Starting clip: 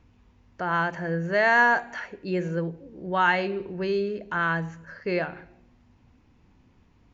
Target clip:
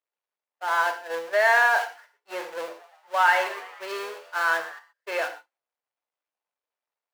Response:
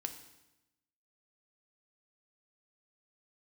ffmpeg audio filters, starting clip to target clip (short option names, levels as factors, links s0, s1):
-filter_complex "[0:a]aeval=exprs='val(0)+0.5*0.0708*sgn(val(0))':c=same,agate=range=0.00141:threshold=0.0708:ratio=16:detection=peak,highpass=f=540:w=0.5412,highpass=f=540:w=1.3066,highshelf=f=4300:g=-8,asettb=1/sr,asplit=3[s0][s1][s2];[s0]atrim=end=2.564[s3];[s1]atrim=start=2.56:end=4.79,asetpts=PTS-STARTPTS,afade=t=in:d=0.004:c=qsin,afade=t=out:st=2.226:d=0.004:c=qsin,asplit=7[s4][s5][s6][s7][s8][s9][s10];[s5]adelay=117,afreqshift=92,volume=0.158[s11];[s6]adelay=234,afreqshift=184,volume=0.0933[s12];[s7]adelay=351,afreqshift=276,volume=0.055[s13];[s8]adelay=468,afreqshift=368,volume=0.0327[s14];[s9]adelay=585,afreqshift=460,volume=0.0193[s15];[s10]adelay=702,afreqshift=552,volume=0.0114[s16];[s4][s11][s12][s13][s14][s15][s16]amix=inputs=7:normalize=0,atrim=end_sample=98343[s17];[s2]atrim=start=4.786[s18];[s3][s17]acrossfade=d=0.004:c1=hsin:c2=qsin[s19];[s19][s18]acrossfade=d=0.004:c1=qsin:c2=hsin[s20];[1:a]atrim=start_sample=2205,afade=t=out:st=0.19:d=0.01,atrim=end_sample=8820[s21];[s20][s21]afir=irnorm=-1:irlink=0,volume=1.19"